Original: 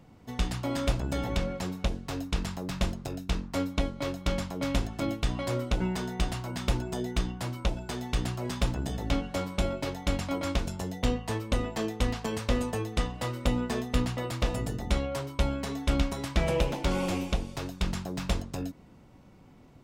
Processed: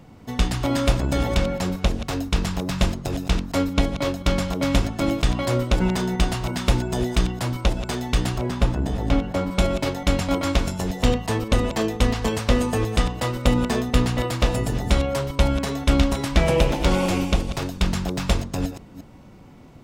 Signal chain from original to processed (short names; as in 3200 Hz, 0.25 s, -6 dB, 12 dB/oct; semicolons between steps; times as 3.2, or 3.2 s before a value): reverse delay 0.176 s, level -11 dB; 8.38–9.51 high shelf 2500 Hz -9.5 dB; gain +8 dB